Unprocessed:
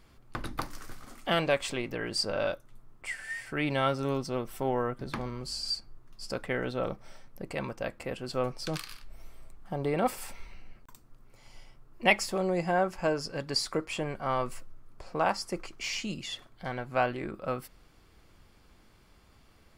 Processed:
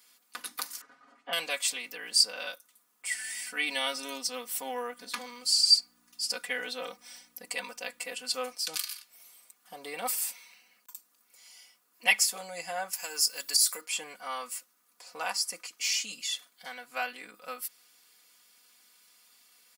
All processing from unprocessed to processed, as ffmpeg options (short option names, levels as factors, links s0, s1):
-filter_complex "[0:a]asettb=1/sr,asplit=3[s0][s1][s2];[s0]atrim=end=0.814[s3];[s1]atrim=start=0.81:end=1.33,asetpts=PTS-STARTPTS,afade=t=in:d=0.004:c=qsin,afade=t=out:st=0.516:d=0.004:c=qsin,lowpass=1200,aecho=1:1:7.3:0.75,atrim=end_sample=22932[s4];[s2]atrim=start=1.326[s5];[s3][s4]acrossfade=d=0.004:c1=hsin:c2=qsin[s6];[s6][s5]acrossfade=d=0.004:c1=qsin:c2=hsin,asettb=1/sr,asplit=3[s7][s8][s9];[s7]atrim=end=3.114[s10];[s8]atrim=start=3.11:end=8.55,asetpts=PTS-STARTPTS,afade=t=in:d=0.004:c=qsin,afade=t=out:st=5.436:d=0.004:c=qsin,equalizer=f=13000:w=4.3:g=-9.5,aeval=exprs='val(0)+0.00355*(sin(2*PI*60*n/s)+sin(2*PI*2*60*n/s)/2+sin(2*PI*3*60*n/s)/3+sin(2*PI*4*60*n/s)/4+sin(2*PI*5*60*n/s)/5)':c=same,aecho=1:1:4.1:0.79,atrim=end_sample=239904[s11];[s9]atrim=start=8.546[s12];[s10][s11]acrossfade=d=0.004:c1=hsin:c2=qsin[s13];[s13][s12]acrossfade=d=0.004:c1=qsin:c2=hsin,asettb=1/sr,asplit=3[s14][s15][s16];[s14]atrim=end=12.934[s17];[s15]atrim=start=12.93:end=13.81,asetpts=PTS-STARTPTS,afade=t=in:d=0.004:c=qsin,afade=t=out:st=0.876:d=0.004:c=qsin,aemphasis=mode=production:type=bsi,acompressor=threshold=0.0447:ratio=12:attack=3.2:release=140:knee=1:detection=peak[s18];[s16]atrim=start=13.806[s19];[s17][s18]acrossfade=d=0.004:c1=hsin:c2=qsin[s20];[s20][s19]acrossfade=d=0.004:c1=qsin:c2=hsin,highpass=110,aderivative,aecho=1:1:4.1:0.96,volume=2.51"